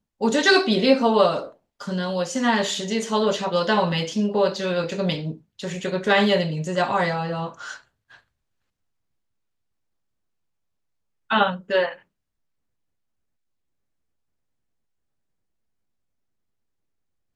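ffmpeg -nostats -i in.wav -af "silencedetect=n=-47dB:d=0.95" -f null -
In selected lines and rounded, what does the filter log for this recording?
silence_start: 8.19
silence_end: 11.30 | silence_duration: 3.11
silence_start: 12.00
silence_end: 17.35 | silence_duration: 5.35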